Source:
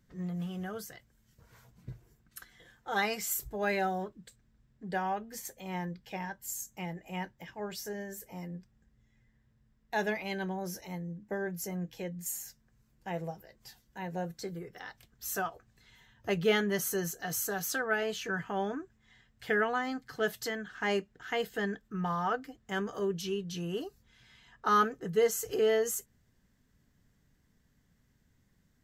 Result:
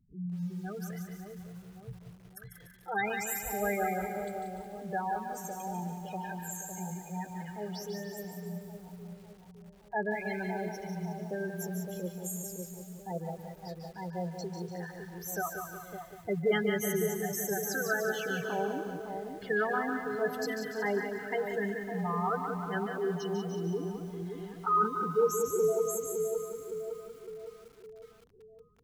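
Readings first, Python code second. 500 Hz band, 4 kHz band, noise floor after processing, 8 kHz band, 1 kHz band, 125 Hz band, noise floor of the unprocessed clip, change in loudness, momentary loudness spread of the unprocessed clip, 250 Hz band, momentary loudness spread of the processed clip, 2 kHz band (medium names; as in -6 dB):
+1.5 dB, -5.5 dB, -55 dBFS, -1.0 dB, +1.0 dB, +2.0 dB, -71 dBFS, 0.0 dB, 17 LU, +1.5 dB, 17 LU, -0.5 dB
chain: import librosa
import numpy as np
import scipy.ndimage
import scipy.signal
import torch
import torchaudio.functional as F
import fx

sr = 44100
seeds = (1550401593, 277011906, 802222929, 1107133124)

y = fx.spec_gate(x, sr, threshold_db=-10, keep='strong')
y = fx.echo_split(y, sr, split_hz=980.0, low_ms=560, high_ms=146, feedback_pct=52, wet_db=-6.5)
y = fx.echo_crushed(y, sr, ms=183, feedback_pct=55, bits=9, wet_db=-7)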